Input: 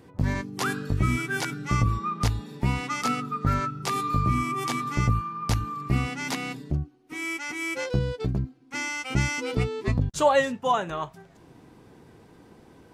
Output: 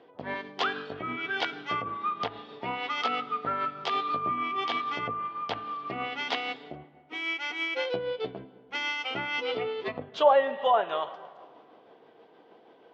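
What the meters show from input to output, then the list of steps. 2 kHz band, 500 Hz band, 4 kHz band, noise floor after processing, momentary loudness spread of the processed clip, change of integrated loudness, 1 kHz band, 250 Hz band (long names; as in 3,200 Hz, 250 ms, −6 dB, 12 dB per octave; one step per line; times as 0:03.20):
−1.5 dB, +0.5 dB, +2.0 dB, −57 dBFS, 12 LU, −3.0 dB, −0.5 dB, −11.0 dB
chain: comb and all-pass reverb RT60 2.2 s, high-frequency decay 0.5×, pre-delay 5 ms, DRR 14.5 dB
treble cut that deepens with the level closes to 1,600 Hz, closed at −18.5 dBFS
amplitude tremolo 6.3 Hz, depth 31%
loudspeaker in its box 440–4,500 Hz, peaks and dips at 460 Hz +5 dB, 690 Hz +7 dB, 3,200 Hz +10 dB
one half of a high-frequency compander decoder only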